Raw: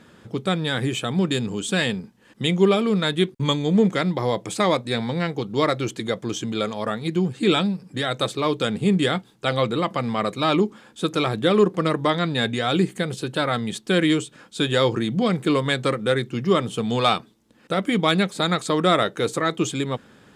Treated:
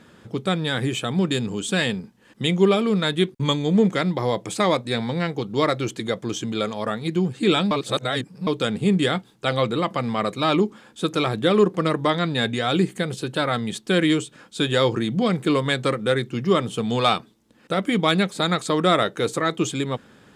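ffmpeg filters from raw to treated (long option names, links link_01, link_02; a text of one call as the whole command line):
ffmpeg -i in.wav -filter_complex "[0:a]asplit=3[link_01][link_02][link_03];[link_01]atrim=end=7.712[link_04];[link_02]atrim=start=7.708:end=8.472,asetpts=PTS-STARTPTS,areverse[link_05];[link_03]atrim=start=8.468[link_06];[link_04][link_05]acrossfade=duration=0.004:curve1=hsin:curve2=hsin[link_07];[link_07][link_06]acrossfade=duration=0.004:curve1=hsin:curve2=hsin" out.wav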